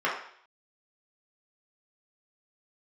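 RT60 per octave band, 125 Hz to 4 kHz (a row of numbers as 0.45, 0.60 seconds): 0.45, 0.55, 0.55, 0.60, 0.65, 0.65 seconds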